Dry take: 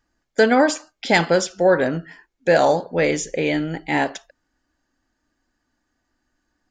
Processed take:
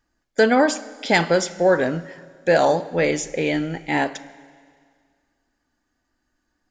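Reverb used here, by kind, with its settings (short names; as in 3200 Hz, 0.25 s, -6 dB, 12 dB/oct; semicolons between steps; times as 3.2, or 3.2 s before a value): Schroeder reverb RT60 2 s, combs from 32 ms, DRR 17 dB; gain -1 dB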